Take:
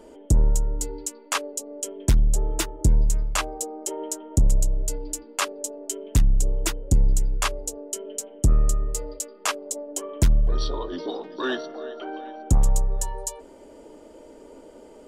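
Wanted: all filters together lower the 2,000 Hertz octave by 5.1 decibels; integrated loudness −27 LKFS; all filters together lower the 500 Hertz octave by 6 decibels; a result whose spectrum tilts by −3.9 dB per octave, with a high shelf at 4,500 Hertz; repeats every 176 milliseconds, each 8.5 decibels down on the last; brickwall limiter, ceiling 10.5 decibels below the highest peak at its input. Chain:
parametric band 500 Hz −7.5 dB
parametric band 2,000 Hz −8.5 dB
high-shelf EQ 4,500 Hz +8.5 dB
brickwall limiter −17 dBFS
repeating echo 176 ms, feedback 38%, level −8.5 dB
level +2.5 dB

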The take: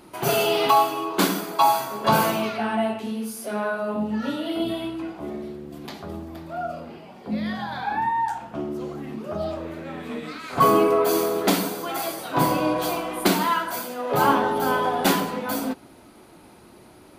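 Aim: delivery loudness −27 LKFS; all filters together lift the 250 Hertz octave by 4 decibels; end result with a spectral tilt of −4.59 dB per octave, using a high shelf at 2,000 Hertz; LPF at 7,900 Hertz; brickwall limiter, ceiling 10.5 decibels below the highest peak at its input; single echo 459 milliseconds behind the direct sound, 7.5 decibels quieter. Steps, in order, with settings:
low-pass filter 7,900 Hz
parametric band 250 Hz +5 dB
high-shelf EQ 2,000 Hz +4.5 dB
brickwall limiter −14.5 dBFS
single-tap delay 459 ms −7.5 dB
level −2 dB

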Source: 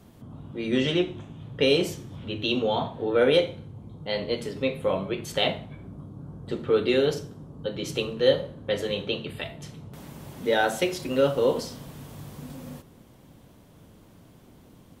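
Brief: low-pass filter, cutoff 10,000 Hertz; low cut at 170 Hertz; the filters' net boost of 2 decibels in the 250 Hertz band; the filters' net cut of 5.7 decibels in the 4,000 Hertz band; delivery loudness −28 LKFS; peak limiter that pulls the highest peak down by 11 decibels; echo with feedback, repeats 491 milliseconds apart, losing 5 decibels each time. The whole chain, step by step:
high-pass filter 170 Hz
low-pass filter 10,000 Hz
parametric band 250 Hz +3.5 dB
parametric band 4,000 Hz −8 dB
brickwall limiter −19.5 dBFS
repeating echo 491 ms, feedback 56%, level −5 dB
level +2 dB

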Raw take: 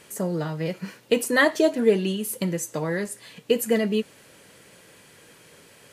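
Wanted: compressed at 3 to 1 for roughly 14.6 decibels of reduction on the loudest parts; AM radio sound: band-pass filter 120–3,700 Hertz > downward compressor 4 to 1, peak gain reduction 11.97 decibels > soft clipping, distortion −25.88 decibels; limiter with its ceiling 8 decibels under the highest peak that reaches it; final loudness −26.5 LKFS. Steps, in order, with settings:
downward compressor 3 to 1, threshold −35 dBFS
brickwall limiter −27.5 dBFS
band-pass filter 120–3,700 Hz
downward compressor 4 to 1, threshold −46 dBFS
soft clipping −35.5 dBFS
level +23.5 dB

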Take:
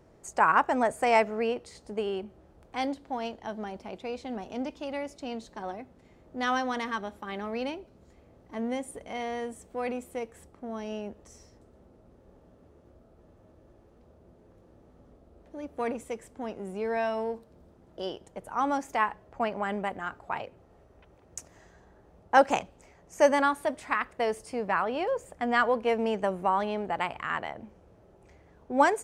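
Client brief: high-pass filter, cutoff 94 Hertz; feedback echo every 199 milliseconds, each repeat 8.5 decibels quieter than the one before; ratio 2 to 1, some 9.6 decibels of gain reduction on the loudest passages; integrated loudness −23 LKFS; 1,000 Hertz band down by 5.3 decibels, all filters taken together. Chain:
high-pass filter 94 Hz
parametric band 1,000 Hz −7 dB
downward compressor 2 to 1, threshold −35 dBFS
repeating echo 199 ms, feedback 38%, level −8.5 dB
level +14.5 dB

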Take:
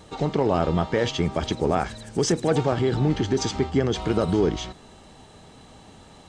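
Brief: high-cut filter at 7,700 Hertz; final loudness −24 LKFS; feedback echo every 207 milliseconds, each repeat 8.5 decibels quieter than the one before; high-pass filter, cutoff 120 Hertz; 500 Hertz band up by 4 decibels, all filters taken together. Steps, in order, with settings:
high-pass filter 120 Hz
low-pass filter 7,700 Hz
parametric band 500 Hz +5 dB
repeating echo 207 ms, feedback 38%, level −8.5 dB
level −2.5 dB

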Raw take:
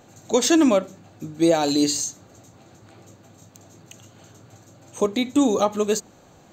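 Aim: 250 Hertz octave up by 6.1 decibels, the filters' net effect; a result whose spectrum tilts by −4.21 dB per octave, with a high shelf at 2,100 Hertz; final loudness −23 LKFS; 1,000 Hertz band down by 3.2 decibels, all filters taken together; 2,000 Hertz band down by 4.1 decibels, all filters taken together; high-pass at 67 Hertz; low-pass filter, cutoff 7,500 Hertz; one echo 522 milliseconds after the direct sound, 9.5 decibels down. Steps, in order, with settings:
high-pass filter 67 Hz
low-pass filter 7,500 Hz
parametric band 250 Hz +8 dB
parametric band 1,000 Hz −4.5 dB
parametric band 2,000 Hz −8 dB
high-shelf EQ 2,100 Hz +5.5 dB
single-tap delay 522 ms −9.5 dB
level −6 dB

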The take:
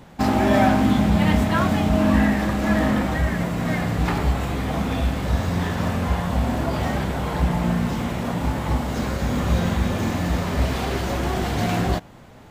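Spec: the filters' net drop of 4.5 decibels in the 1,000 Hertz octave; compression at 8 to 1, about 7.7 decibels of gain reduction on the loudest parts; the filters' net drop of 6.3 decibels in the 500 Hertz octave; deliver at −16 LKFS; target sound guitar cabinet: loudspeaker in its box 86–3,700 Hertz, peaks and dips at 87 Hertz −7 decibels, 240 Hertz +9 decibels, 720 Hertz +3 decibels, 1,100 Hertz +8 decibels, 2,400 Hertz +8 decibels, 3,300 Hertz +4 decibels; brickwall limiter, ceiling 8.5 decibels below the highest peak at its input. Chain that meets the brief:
parametric band 500 Hz −7.5 dB
parametric band 1,000 Hz −9 dB
downward compressor 8 to 1, threshold −23 dBFS
brickwall limiter −24 dBFS
loudspeaker in its box 86–3,700 Hz, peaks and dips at 87 Hz −7 dB, 240 Hz +9 dB, 720 Hz +3 dB, 1,100 Hz +8 dB, 2,400 Hz +8 dB, 3,300 Hz +4 dB
level +14.5 dB

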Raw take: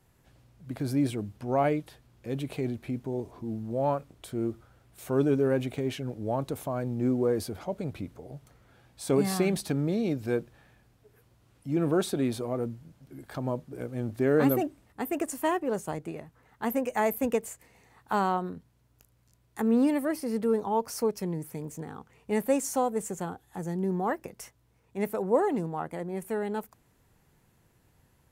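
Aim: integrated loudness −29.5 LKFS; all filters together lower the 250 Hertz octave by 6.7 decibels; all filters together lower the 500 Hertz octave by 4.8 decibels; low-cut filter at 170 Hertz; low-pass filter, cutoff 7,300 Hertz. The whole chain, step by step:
high-pass filter 170 Hz
low-pass filter 7,300 Hz
parametric band 250 Hz −6 dB
parametric band 500 Hz −4 dB
level +5.5 dB

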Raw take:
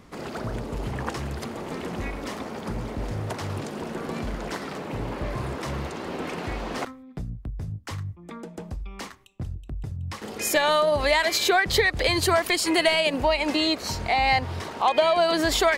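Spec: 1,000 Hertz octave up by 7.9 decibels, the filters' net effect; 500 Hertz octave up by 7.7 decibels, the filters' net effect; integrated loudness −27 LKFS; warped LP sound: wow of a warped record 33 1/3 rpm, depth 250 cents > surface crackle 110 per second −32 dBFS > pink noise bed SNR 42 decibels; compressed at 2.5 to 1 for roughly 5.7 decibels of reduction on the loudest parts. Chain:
parametric band 500 Hz +7.5 dB
parametric band 1,000 Hz +7.5 dB
downward compressor 2.5 to 1, threshold −17 dBFS
wow of a warped record 33 1/3 rpm, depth 250 cents
surface crackle 110 per second −32 dBFS
pink noise bed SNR 42 dB
level −4 dB

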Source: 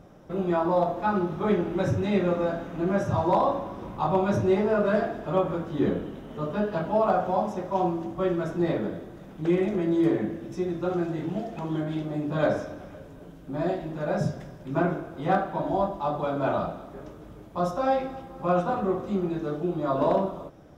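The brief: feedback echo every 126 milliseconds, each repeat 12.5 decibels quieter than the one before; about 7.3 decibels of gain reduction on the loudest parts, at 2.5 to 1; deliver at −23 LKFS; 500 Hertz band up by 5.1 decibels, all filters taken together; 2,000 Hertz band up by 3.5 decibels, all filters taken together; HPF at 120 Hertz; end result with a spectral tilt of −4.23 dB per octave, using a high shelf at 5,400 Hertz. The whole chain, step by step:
high-pass filter 120 Hz
parametric band 500 Hz +6.5 dB
parametric band 2,000 Hz +5.5 dB
high-shelf EQ 5,400 Hz −8 dB
downward compressor 2.5 to 1, threshold −25 dBFS
repeating echo 126 ms, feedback 24%, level −12.5 dB
level +5 dB

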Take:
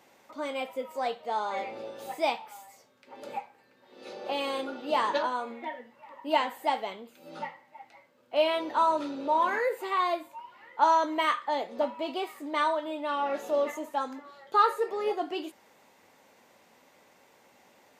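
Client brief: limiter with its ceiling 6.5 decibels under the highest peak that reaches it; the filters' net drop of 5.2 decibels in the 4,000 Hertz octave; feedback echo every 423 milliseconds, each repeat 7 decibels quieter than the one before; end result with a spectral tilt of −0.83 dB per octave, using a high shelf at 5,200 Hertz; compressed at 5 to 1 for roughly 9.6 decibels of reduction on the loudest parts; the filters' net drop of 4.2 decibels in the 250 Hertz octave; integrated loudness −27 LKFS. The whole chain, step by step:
parametric band 250 Hz −5.5 dB
parametric band 4,000 Hz −4 dB
high-shelf EQ 5,200 Hz −8.5 dB
downward compressor 5 to 1, threshold −29 dBFS
brickwall limiter −26.5 dBFS
repeating echo 423 ms, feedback 45%, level −7 dB
level +10 dB

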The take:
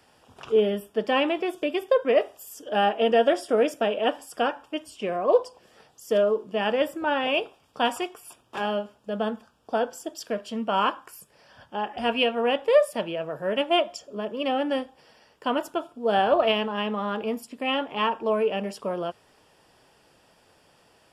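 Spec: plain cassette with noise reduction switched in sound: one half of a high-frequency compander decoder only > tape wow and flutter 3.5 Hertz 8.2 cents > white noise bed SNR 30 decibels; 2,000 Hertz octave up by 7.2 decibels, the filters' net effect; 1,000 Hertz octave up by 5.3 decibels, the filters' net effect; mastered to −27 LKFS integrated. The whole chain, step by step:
parametric band 1,000 Hz +5.5 dB
parametric band 2,000 Hz +8 dB
one half of a high-frequency compander decoder only
tape wow and flutter 3.5 Hz 8.2 cents
white noise bed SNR 30 dB
level −4.5 dB

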